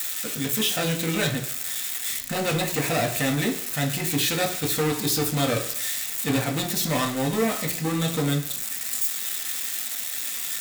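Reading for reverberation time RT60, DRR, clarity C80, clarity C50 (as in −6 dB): 0.70 s, 0.0 dB, 13.5 dB, 11.0 dB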